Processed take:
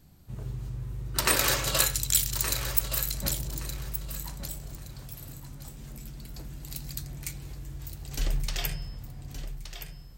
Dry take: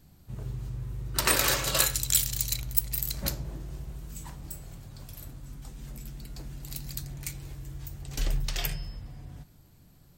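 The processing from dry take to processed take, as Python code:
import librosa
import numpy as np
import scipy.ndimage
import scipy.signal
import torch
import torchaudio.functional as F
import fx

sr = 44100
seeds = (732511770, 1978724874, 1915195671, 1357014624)

y = fx.echo_feedback(x, sr, ms=1170, feedback_pct=26, wet_db=-10.0)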